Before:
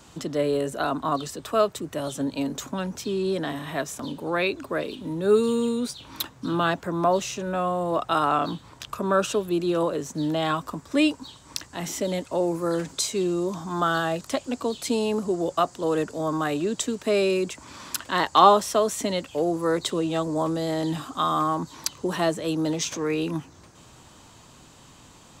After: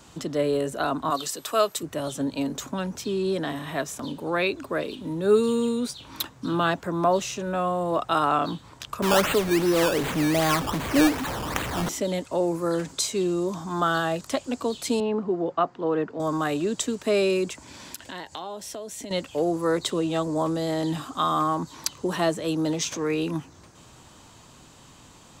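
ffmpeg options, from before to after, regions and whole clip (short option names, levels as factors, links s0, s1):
-filter_complex "[0:a]asettb=1/sr,asplit=3[s0][s1][s2];[s0]atrim=end=1.104[s3];[s1]atrim=start=1.1:end=1.83,asetpts=PTS-STARTPTS,afade=t=in:d=0.004:c=qsin,afade=t=out:st=0.726:d=0.004:c=qsin,highpass=f=380:p=1,highshelf=f=3000:g=8,aeval=exprs='val(0)+0.002*sin(2*PI*12000*n/s)':c=same[s4];[s2]atrim=start=1.826[s5];[s3][s4]acrossfade=d=0.004:c1=hsin:c2=qsin[s6];[s6][s5]acrossfade=d=0.004:c1=qsin:c2=hsin,asettb=1/sr,asplit=3[s7][s8][s9];[s7]atrim=end=9.024[s10];[s8]atrim=start=9.02:end=11.89,asetpts=PTS-STARTPTS,afade=t=in:d=0.004:c=qsin,afade=t=out:st=2.866:d=0.004:c=qsin,aeval=exprs='val(0)+0.5*0.0531*sgn(val(0))':c=same,acrusher=samples=15:mix=1:aa=0.000001:lfo=1:lforange=15:lforate=2.6[s11];[s9]atrim=start=11.886[s12];[s10][s11]acrossfade=d=0.004:c1=hsin:c2=qsin[s13];[s13][s12]acrossfade=d=0.004:c1=qsin:c2=hsin,asettb=1/sr,asplit=3[s14][s15][s16];[s14]atrim=end=15.004[s17];[s15]atrim=start=15:end=16.2,asetpts=PTS-STARTPTS,afade=t=in:d=0.004:c=qsin,afade=t=out:st=1.196:d=0.004:c=qsin,highpass=140,lowpass=2600,aemphasis=mode=reproduction:type=50kf,bandreject=f=580:w=8[s18];[s16]atrim=start=16.196[s19];[s17][s18]acrossfade=d=0.004:c1=hsin:c2=qsin[s20];[s20][s19]acrossfade=d=0.004:c1=qsin:c2=hsin,asettb=1/sr,asplit=3[s21][s22][s23];[s21]atrim=end=17.604[s24];[s22]atrim=start=17.6:end=19.11,asetpts=PTS-STARTPTS,afade=t=in:d=0.004:c=qsin,afade=t=out:st=1.506:d=0.004:c=qsin,equalizer=f=1200:w=4:g=-12.5,acompressor=threshold=0.02:ratio=5:attack=3.2:release=140:knee=1:detection=peak[s25];[s23]atrim=start=19.106[s26];[s24][s25]acrossfade=d=0.004:c1=hsin:c2=qsin[s27];[s27][s26]acrossfade=d=0.004:c1=qsin:c2=hsin"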